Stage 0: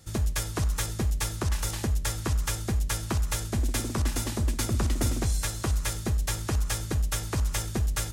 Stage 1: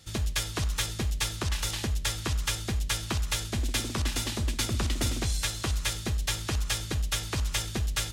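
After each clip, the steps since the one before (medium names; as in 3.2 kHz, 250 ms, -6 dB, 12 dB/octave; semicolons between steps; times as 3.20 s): peaking EQ 3.3 kHz +10 dB 1.6 oct; trim -3 dB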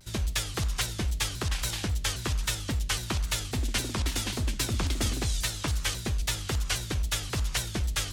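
vibrato with a chosen wave saw down 3.7 Hz, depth 250 cents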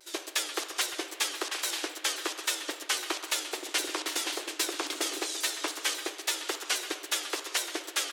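brick-wall FIR high-pass 290 Hz; speakerphone echo 130 ms, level -10 dB; reverberation RT60 3.6 s, pre-delay 61 ms, DRR 12.5 dB; trim +1 dB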